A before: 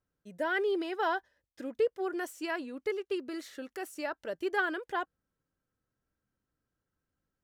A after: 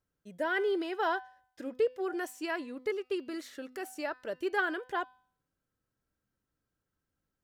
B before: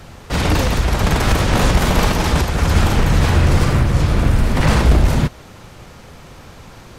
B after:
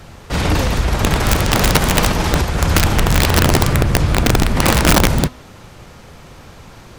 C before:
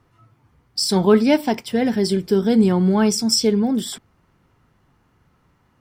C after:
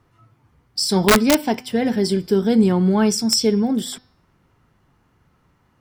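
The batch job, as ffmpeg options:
ffmpeg -i in.wav -af "bandreject=frequency=252.9:width_type=h:width=4,bandreject=frequency=505.8:width_type=h:width=4,bandreject=frequency=758.7:width_type=h:width=4,bandreject=frequency=1011.6:width_type=h:width=4,bandreject=frequency=1264.5:width_type=h:width=4,bandreject=frequency=1517.4:width_type=h:width=4,bandreject=frequency=1770.3:width_type=h:width=4,bandreject=frequency=2023.2:width_type=h:width=4,bandreject=frequency=2276.1:width_type=h:width=4,bandreject=frequency=2529:width_type=h:width=4,bandreject=frequency=2781.9:width_type=h:width=4,bandreject=frequency=3034.8:width_type=h:width=4,bandreject=frequency=3287.7:width_type=h:width=4,bandreject=frequency=3540.6:width_type=h:width=4,bandreject=frequency=3793.5:width_type=h:width=4,bandreject=frequency=4046.4:width_type=h:width=4,bandreject=frequency=4299.3:width_type=h:width=4,bandreject=frequency=4552.2:width_type=h:width=4,bandreject=frequency=4805.1:width_type=h:width=4,bandreject=frequency=5058:width_type=h:width=4,bandreject=frequency=5310.9:width_type=h:width=4,bandreject=frequency=5563.8:width_type=h:width=4,aeval=exprs='(mod(2*val(0)+1,2)-1)/2':channel_layout=same" out.wav

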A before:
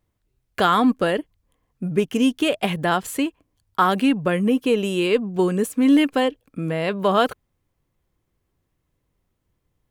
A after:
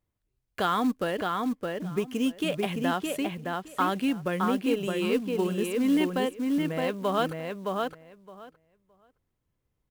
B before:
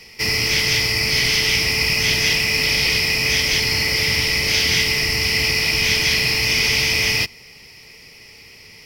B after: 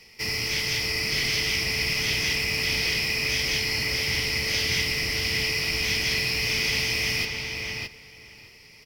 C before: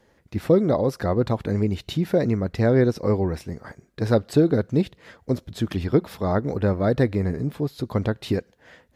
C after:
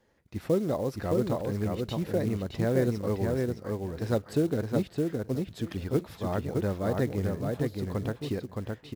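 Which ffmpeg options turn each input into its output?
ffmpeg -i in.wav -filter_complex "[0:a]asplit=2[link_01][link_02];[link_02]adelay=616,lowpass=frequency=3600:poles=1,volume=-3dB,asplit=2[link_03][link_04];[link_04]adelay=616,lowpass=frequency=3600:poles=1,volume=0.15,asplit=2[link_05][link_06];[link_06]adelay=616,lowpass=frequency=3600:poles=1,volume=0.15[link_07];[link_01][link_03][link_05][link_07]amix=inputs=4:normalize=0,acrusher=bits=6:mode=log:mix=0:aa=0.000001,volume=-8.5dB" out.wav

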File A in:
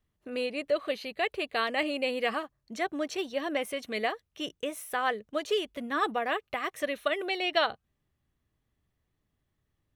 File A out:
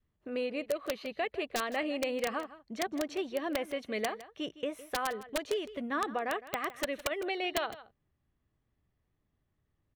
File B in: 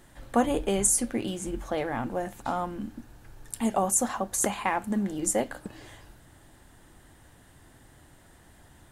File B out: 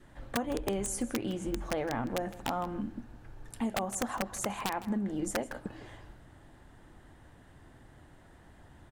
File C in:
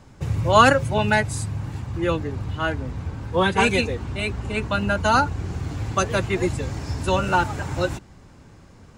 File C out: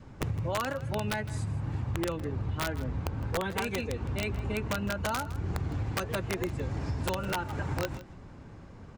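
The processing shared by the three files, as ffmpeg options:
ffmpeg -i in.wav -af "lowpass=frequency=2100:poles=1,adynamicequalizer=threshold=0.0141:dfrequency=780:dqfactor=3.1:tfrequency=780:tqfactor=3.1:attack=5:release=100:ratio=0.375:range=1.5:mode=cutabove:tftype=bell,acompressor=threshold=-28dB:ratio=16,aeval=exprs='(mod(13.3*val(0)+1,2)-1)/13.3':channel_layout=same,aecho=1:1:160:0.15" out.wav

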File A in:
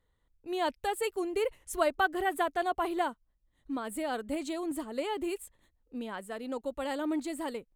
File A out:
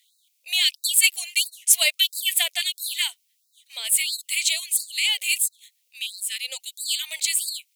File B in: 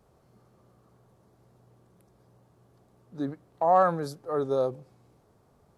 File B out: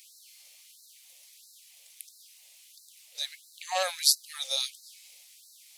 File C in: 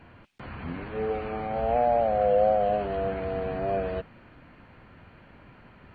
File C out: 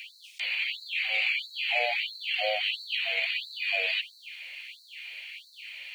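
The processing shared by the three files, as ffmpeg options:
ffmpeg -i in.wav -af "highshelf=frequency=1600:width_type=q:width=3:gain=10,aexciter=amount=6.3:drive=7.4:freq=2400,afftfilt=real='re*gte(b*sr/1024,450*pow(3900/450,0.5+0.5*sin(2*PI*1.5*pts/sr)))':imag='im*gte(b*sr/1024,450*pow(3900/450,0.5+0.5*sin(2*PI*1.5*pts/sr)))':win_size=1024:overlap=0.75,volume=-6dB" out.wav

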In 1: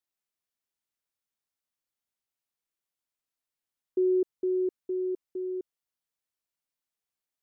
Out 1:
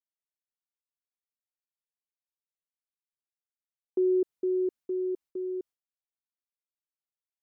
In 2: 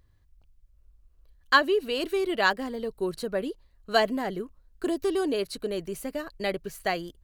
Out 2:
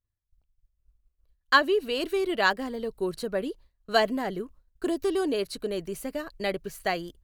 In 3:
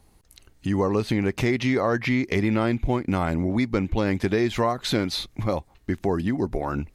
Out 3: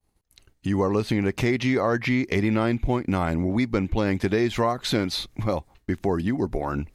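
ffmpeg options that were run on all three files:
ffmpeg -i in.wav -af "agate=range=-33dB:threshold=-47dB:ratio=3:detection=peak" out.wav

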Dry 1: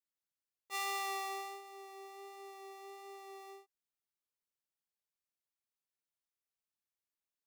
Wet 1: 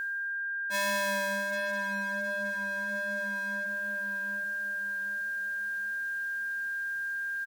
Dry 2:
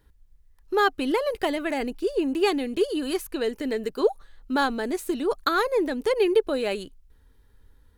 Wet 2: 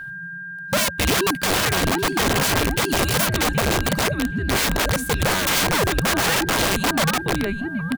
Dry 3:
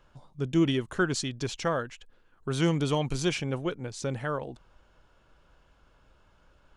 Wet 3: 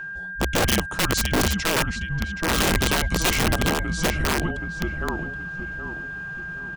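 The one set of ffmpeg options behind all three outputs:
ffmpeg -i in.wav -filter_complex "[0:a]areverse,acompressor=mode=upward:threshold=-42dB:ratio=2.5,areverse,asplit=2[link_01][link_02];[link_02]adelay=774,lowpass=frequency=1900:poles=1,volume=-4dB,asplit=2[link_03][link_04];[link_04]adelay=774,lowpass=frequency=1900:poles=1,volume=0.39,asplit=2[link_05][link_06];[link_06]adelay=774,lowpass=frequency=1900:poles=1,volume=0.39,asplit=2[link_07][link_08];[link_08]adelay=774,lowpass=frequency=1900:poles=1,volume=0.39,asplit=2[link_09][link_10];[link_10]adelay=774,lowpass=frequency=1900:poles=1,volume=0.39[link_11];[link_01][link_03][link_05][link_07][link_09][link_11]amix=inputs=6:normalize=0,afreqshift=-190,aeval=exprs='(mod(12.6*val(0)+1,2)-1)/12.6':channel_layout=same,aeval=exprs='val(0)+0.0126*sin(2*PI*1600*n/s)':channel_layout=same,volume=7dB" out.wav

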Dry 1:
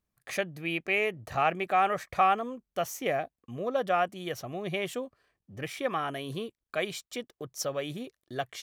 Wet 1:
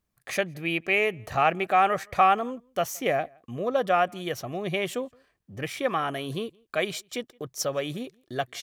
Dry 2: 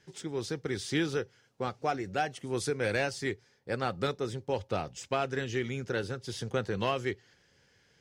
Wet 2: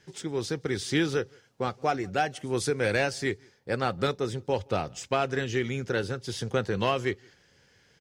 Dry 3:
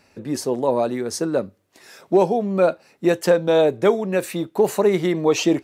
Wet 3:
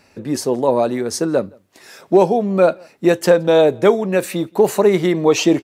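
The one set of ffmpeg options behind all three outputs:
ffmpeg -i in.wav -filter_complex "[0:a]asplit=2[link_01][link_02];[link_02]adelay=169.1,volume=-29dB,highshelf=frequency=4000:gain=-3.8[link_03];[link_01][link_03]amix=inputs=2:normalize=0,volume=4dB" out.wav

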